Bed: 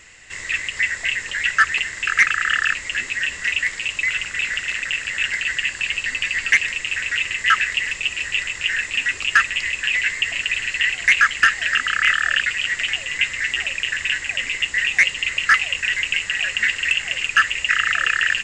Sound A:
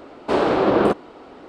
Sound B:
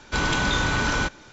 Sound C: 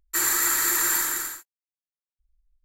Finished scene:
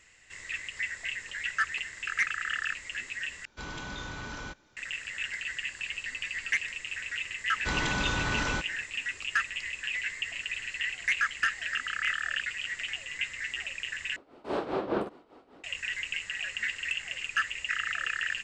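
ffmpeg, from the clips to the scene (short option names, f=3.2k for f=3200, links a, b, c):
-filter_complex "[2:a]asplit=2[a][b];[0:a]volume=-13dB[c];[1:a]tremolo=f=5:d=0.75[d];[c]asplit=3[e][f][g];[e]atrim=end=3.454[h];[a]atrim=end=1.32,asetpts=PTS-STARTPTS,volume=-16.5dB[i];[f]atrim=start=4.766:end=14.164[j];[d]atrim=end=1.48,asetpts=PTS-STARTPTS,volume=-10.5dB[k];[g]atrim=start=15.636[l];[b]atrim=end=1.32,asetpts=PTS-STARTPTS,volume=-7dB,afade=t=in:d=0.004:c=hsin,afade=t=out:st=1.316:d=0.004:c=hsin,adelay=7530[m];[h][i]acrossfade=d=0.004:c1=hsin:c2=hsin[n];[n][j]acrossfade=d=0.004:c1=hsin:c2=hsin[o];[o][k]acrossfade=d=0.004:c1=hsin:c2=hsin[p];[p][l]acrossfade=d=0.004:c1=hsin:c2=hsin[q];[q][m]amix=inputs=2:normalize=0"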